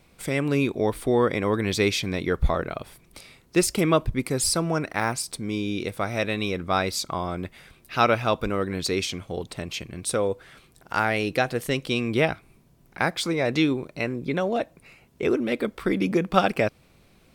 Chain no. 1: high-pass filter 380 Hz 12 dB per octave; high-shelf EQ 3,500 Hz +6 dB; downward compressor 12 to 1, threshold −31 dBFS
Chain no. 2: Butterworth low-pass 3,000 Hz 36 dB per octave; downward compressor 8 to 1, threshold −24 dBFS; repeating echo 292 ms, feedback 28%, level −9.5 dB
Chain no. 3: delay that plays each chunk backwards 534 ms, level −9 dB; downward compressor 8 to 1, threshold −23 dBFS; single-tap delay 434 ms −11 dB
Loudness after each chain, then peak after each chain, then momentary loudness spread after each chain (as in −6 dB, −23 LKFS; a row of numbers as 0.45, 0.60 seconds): −36.0, −30.5, −29.0 LKFS; −11.5, −9.0, −8.5 dBFS; 8, 9, 6 LU